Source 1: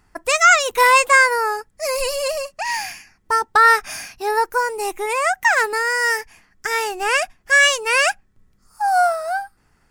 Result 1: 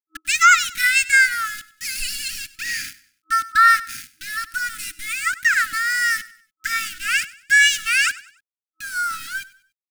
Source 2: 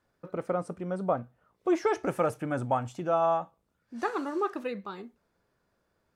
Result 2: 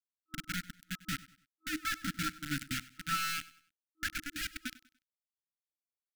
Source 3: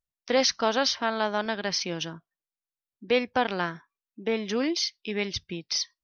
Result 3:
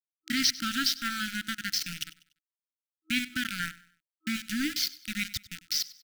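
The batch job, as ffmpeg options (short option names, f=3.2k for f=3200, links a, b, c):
-af "aeval=exprs='val(0)*gte(abs(val(0)),0.0447)':c=same,aecho=1:1:97|194|291:0.112|0.0393|0.0137,afftfilt=real='re*(1-between(b*sr/4096,320,1300))':imag='im*(1-between(b*sr/4096,320,1300))':win_size=4096:overlap=0.75"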